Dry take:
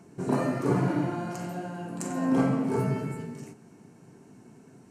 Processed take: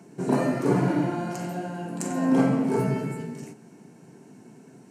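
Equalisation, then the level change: HPF 130 Hz 24 dB/oct; bell 1200 Hz -5.5 dB 0.26 oct; +3.5 dB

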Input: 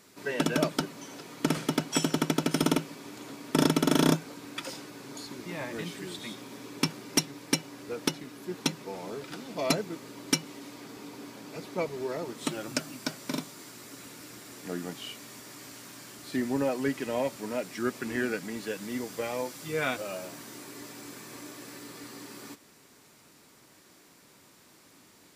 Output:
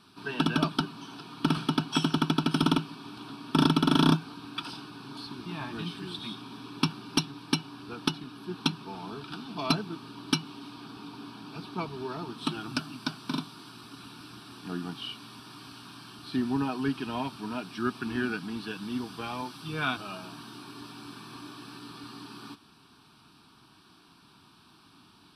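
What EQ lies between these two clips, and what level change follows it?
Bessel low-pass 7600 Hz, order 4; fixed phaser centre 2000 Hz, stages 6; +4.5 dB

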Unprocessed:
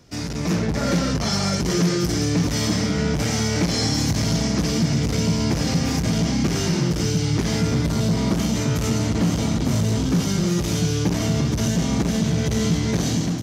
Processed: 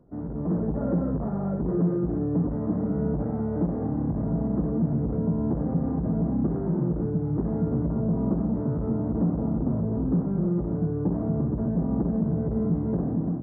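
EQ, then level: Gaussian blur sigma 9.5 samples; bell 96 Hz -10 dB 0.67 oct; -2.0 dB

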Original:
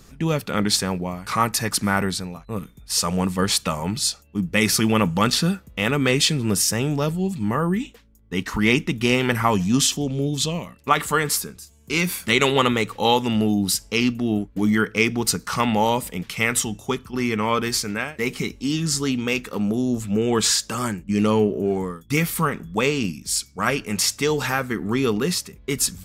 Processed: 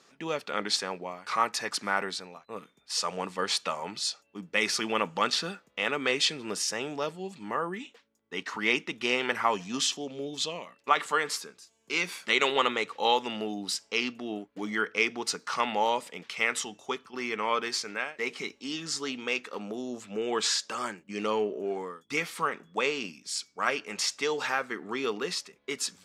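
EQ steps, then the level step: BPF 440–5800 Hz; -5.0 dB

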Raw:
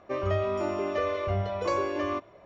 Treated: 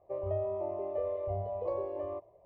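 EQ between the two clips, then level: LPF 1000 Hz 12 dB/oct; dynamic EQ 710 Hz, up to +4 dB, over -43 dBFS, Q 0.8; fixed phaser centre 600 Hz, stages 4; -6.5 dB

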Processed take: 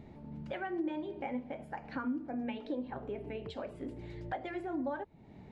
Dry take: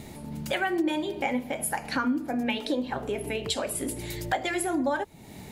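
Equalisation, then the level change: tape spacing loss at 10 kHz 37 dB; -7.5 dB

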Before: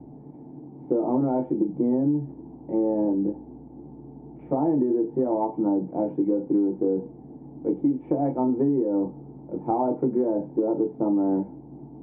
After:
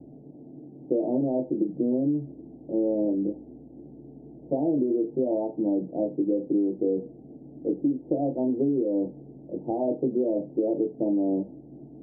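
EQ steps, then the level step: elliptic low-pass 640 Hz, stop band 70 dB; low shelf 480 Hz -9 dB; +4.5 dB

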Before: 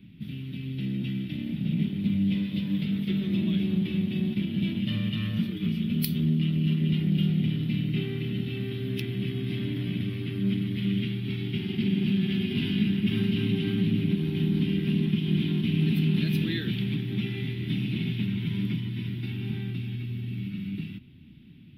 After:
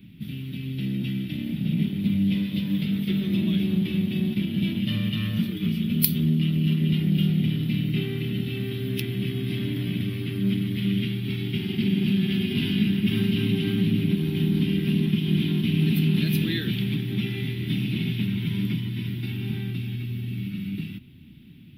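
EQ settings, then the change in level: high shelf 7900 Hz +11.5 dB; +2.5 dB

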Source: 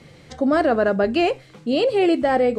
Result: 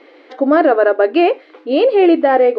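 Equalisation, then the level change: brick-wall FIR high-pass 260 Hz; air absorption 330 m; +8.0 dB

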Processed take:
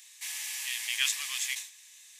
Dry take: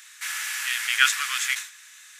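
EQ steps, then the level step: fixed phaser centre 580 Hz, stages 4; -3.5 dB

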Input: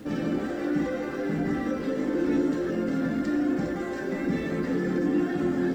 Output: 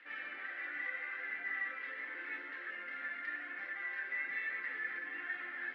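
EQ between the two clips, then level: ladder band-pass 2200 Hz, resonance 65%; air absorption 380 m; +10.5 dB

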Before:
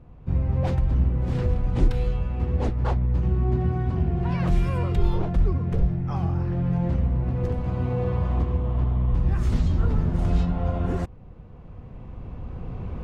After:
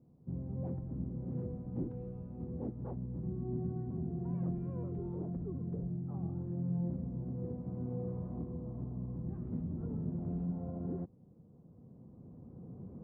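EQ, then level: ladder band-pass 250 Hz, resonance 20%; air absorption 140 m; +2.0 dB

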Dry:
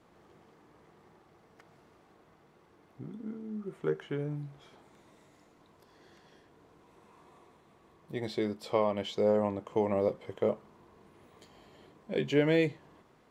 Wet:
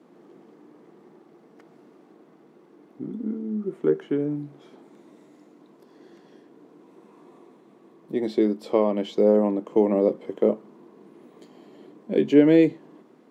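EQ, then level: HPF 160 Hz 24 dB/oct; bell 290 Hz +14 dB 1.7 oct; 0.0 dB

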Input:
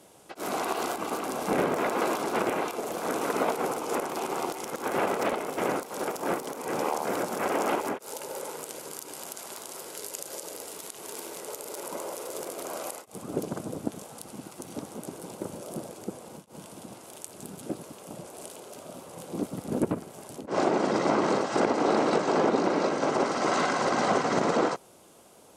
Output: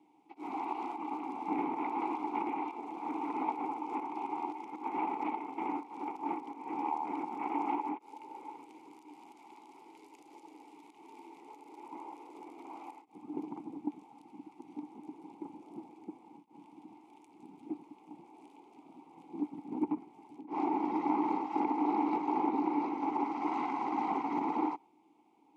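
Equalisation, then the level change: dynamic EQ 1200 Hz, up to +5 dB, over -40 dBFS, Q 0.78; vowel filter u; bell 810 Hz +4.5 dB 0.65 oct; 0.0 dB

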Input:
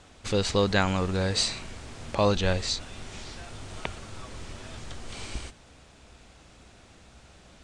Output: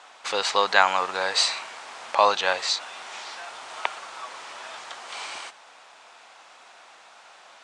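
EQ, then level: resonant high-pass 890 Hz, resonance Q 1.7; high shelf 7400 Hz -9 dB; +6.5 dB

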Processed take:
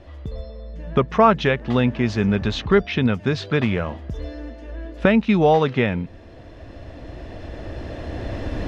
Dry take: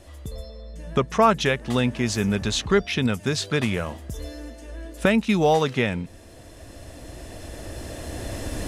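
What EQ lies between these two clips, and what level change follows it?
air absorption 250 m; +4.0 dB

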